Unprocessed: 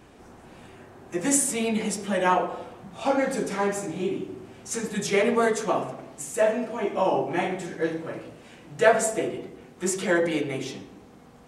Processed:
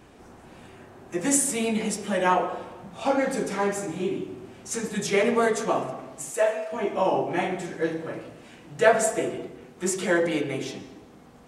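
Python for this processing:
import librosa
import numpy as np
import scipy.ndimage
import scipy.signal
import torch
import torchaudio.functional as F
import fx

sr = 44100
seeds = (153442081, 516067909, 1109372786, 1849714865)

y = fx.highpass(x, sr, hz=fx.line((6.3, 270.0), (6.71, 1000.0)), slope=12, at=(6.3, 6.71), fade=0.02)
y = fx.rev_freeverb(y, sr, rt60_s=1.1, hf_ratio=0.75, predelay_ms=100, drr_db=16.5)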